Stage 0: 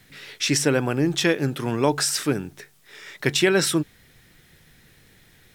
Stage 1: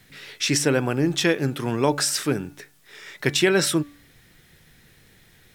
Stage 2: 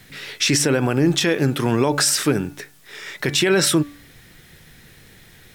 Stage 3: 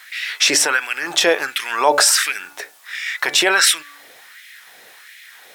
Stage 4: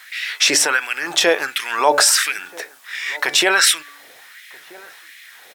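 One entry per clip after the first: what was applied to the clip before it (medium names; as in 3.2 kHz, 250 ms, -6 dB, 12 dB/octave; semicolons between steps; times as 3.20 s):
de-hum 289.1 Hz, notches 9
peak limiter -15 dBFS, peak gain reduction 9.5 dB; trim +7 dB
LFO high-pass sine 1.4 Hz 580–2200 Hz; trim +4.5 dB
echo from a far wall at 220 m, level -22 dB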